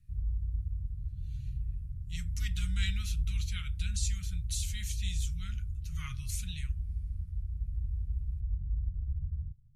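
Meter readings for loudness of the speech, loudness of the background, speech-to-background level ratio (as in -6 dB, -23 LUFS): -41.5 LUFS, -37.0 LUFS, -4.5 dB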